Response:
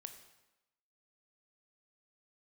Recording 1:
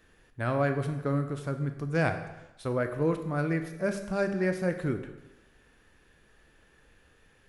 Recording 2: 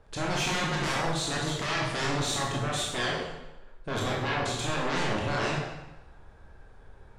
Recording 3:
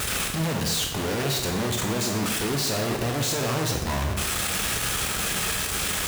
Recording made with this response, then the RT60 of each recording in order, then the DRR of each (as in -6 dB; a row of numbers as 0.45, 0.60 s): 1; 0.95, 0.95, 0.95 s; 7.0, -3.5, 1.5 dB